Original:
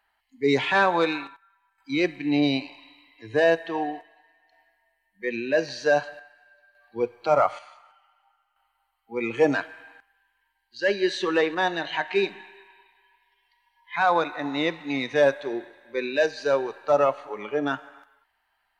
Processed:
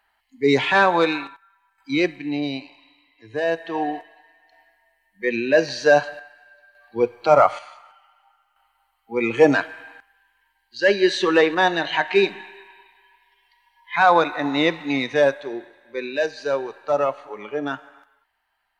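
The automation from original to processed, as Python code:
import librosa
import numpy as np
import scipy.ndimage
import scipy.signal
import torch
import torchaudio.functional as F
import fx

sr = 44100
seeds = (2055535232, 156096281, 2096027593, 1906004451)

y = fx.gain(x, sr, db=fx.line((1.98, 4.0), (2.4, -4.0), (3.41, -4.0), (3.95, 6.0), (14.84, 6.0), (15.49, -0.5)))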